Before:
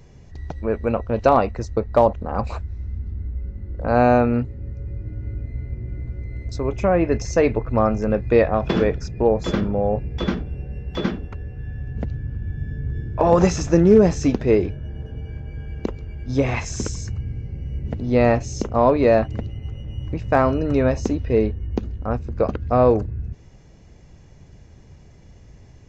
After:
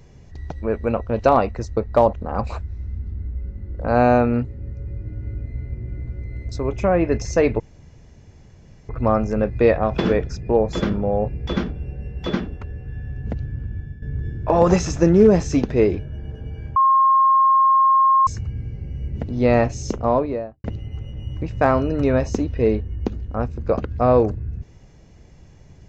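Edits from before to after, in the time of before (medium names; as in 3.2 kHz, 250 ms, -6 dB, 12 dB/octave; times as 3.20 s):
7.60 s: insert room tone 1.29 s
12.29–12.73 s: fade out equal-power, to -14.5 dB
15.47–16.98 s: bleep 1.07 kHz -11.5 dBFS
18.62–19.35 s: studio fade out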